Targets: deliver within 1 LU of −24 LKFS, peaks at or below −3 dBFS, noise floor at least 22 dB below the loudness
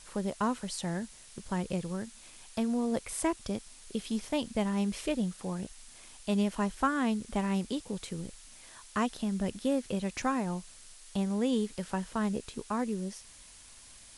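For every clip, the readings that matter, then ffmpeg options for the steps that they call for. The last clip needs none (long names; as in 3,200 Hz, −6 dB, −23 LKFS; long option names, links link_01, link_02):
background noise floor −53 dBFS; target noise floor −56 dBFS; integrated loudness −33.5 LKFS; sample peak −15.5 dBFS; target loudness −24.0 LKFS
→ -af "afftdn=noise_reduction=6:noise_floor=-53"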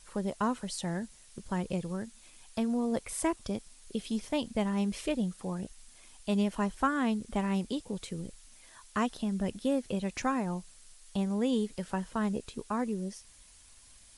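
background noise floor −57 dBFS; integrated loudness −33.5 LKFS; sample peak −15.5 dBFS; target loudness −24.0 LKFS
→ -af "volume=9.5dB"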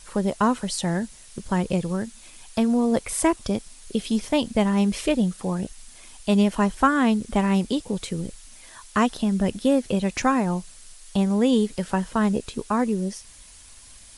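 integrated loudness −24.0 LKFS; sample peak −6.0 dBFS; background noise floor −47 dBFS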